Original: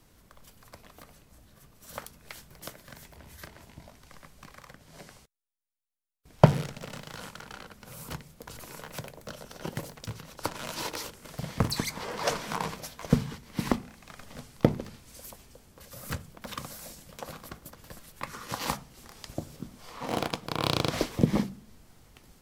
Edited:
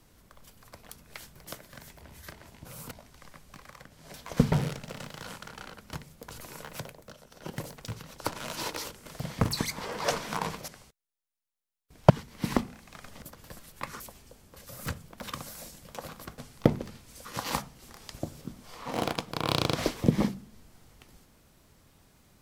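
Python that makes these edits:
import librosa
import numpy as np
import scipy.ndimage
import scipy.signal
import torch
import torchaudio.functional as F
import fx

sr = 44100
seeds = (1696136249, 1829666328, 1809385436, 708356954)

y = fx.edit(x, sr, fx.cut(start_s=0.89, length_s=1.15),
    fx.swap(start_s=5.03, length_s=1.42, other_s=12.87, other_length_s=0.38),
    fx.move(start_s=7.86, length_s=0.26, to_s=3.8),
    fx.fade_down_up(start_s=8.97, length_s=0.89, db=-9.0, fade_s=0.38),
    fx.swap(start_s=14.37, length_s=0.87, other_s=17.62, other_length_s=0.78), tone=tone)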